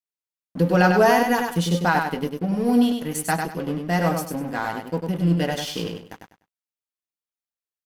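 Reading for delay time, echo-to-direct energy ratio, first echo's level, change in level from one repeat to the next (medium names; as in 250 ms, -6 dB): 99 ms, -4.5 dB, -5.0 dB, -12.0 dB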